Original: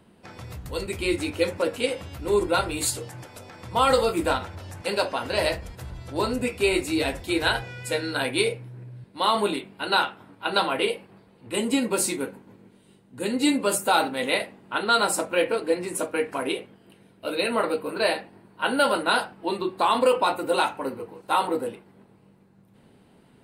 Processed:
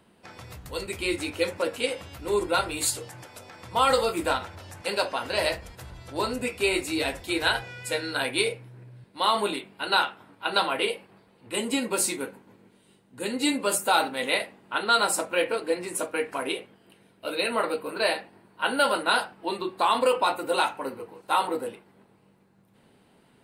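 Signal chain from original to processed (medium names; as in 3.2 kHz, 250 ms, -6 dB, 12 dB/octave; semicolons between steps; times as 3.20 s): bass shelf 430 Hz -6.5 dB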